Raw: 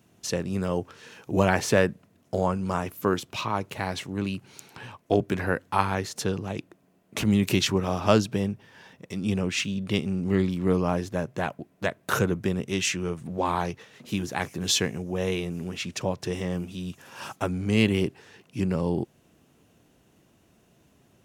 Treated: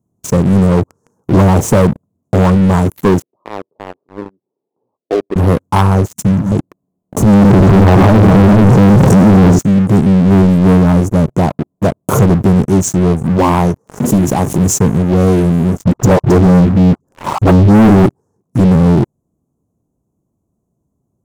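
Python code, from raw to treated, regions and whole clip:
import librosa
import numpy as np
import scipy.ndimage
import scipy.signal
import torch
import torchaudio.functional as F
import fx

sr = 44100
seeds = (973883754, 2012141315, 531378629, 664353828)

y = fx.chain(x, sr, fx.env_lowpass(base_hz=660.0, full_db=-20.5),
    fx.ladder_bandpass(hz=520.0, resonance_pct=35), at=(3.22, 5.36))
y = fx.chain(y, sr, fx.ellip_bandstop(low_hz=250.0, high_hz=5300.0, order=3, stop_db=40),
    fx.hum_notches(base_hz=50, count=3), at=(6.08, 6.52))
y = fx.chain(y, sr, fx.env_lowpass_down(base_hz=460.0, full_db=-16.5),
    fx.echo_multitap(ms=(63, 84, 427), db=(-19.0, -12.0, -6.5)),
    fx.env_flatten(amount_pct=100), at=(7.33, 9.59))
y = fx.chain(y, sr, fx.low_shelf(hz=61.0, db=-11.0),
    fx.pre_swell(db_per_s=72.0), at=(13.43, 14.58))
y = fx.chain(y, sr, fx.envelope_sharpen(power=2.0),
    fx.leveller(passes=2),
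    fx.dispersion(late='highs', ms=71.0, hz=370.0), at=(15.84, 18.06))
y = scipy.signal.sosfilt(scipy.signal.cheby1(3, 1.0, [1100.0, 6700.0], 'bandstop', fs=sr, output='sos'), y)
y = fx.low_shelf(y, sr, hz=390.0, db=10.5)
y = fx.leveller(y, sr, passes=5)
y = F.gain(torch.from_numpy(y), -3.5).numpy()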